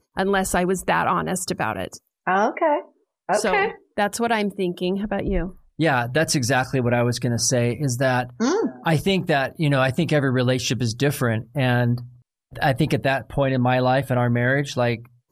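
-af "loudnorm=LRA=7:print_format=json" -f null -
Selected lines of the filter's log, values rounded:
"input_i" : "-21.8",
"input_tp" : "-8.8",
"input_lra" : "1.7",
"input_thresh" : "-32.0",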